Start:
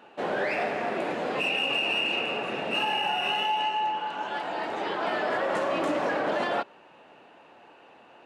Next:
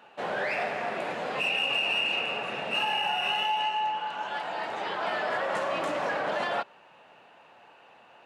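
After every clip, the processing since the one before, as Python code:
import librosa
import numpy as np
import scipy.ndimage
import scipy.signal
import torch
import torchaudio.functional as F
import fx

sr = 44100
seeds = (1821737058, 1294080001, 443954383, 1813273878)

y = scipy.signal.sosfilt(scipy.signal.butter(2, 79.0, 'highpass', fs=sr, output='sos'), x)
y = fx.peak_eq(y, sr, hz=310.0, db=-9.0, octaves=1.2)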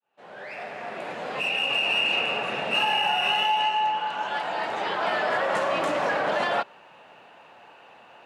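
y = fx.fade_in_head(x, sr, length_s=2.19)
y = y * 10.0 ** (4.5 / 20.0)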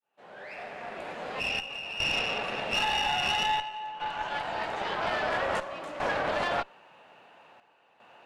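y = fx.chopper(x, sr, hz=0.5, depth_pct=65, duty_pct=80)
y = fx.tube_stage(y, sr, drive_db=19.0, bias=0.75)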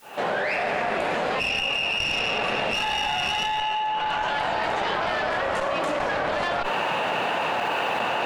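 y = fx.env_flatten(x, sr, amount_pct=100)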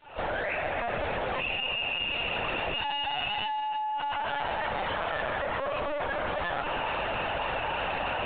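y = fx.lpc_vocoder(x, sr, seeds[0], excitation='pitch_kept', order=16)
y = y * 10.0 ** (-5.5 / 20.0)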